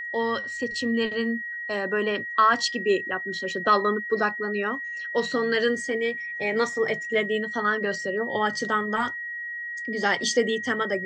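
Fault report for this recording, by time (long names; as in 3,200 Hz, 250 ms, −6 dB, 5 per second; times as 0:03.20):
whistle 1,900 Hz −31 dBFS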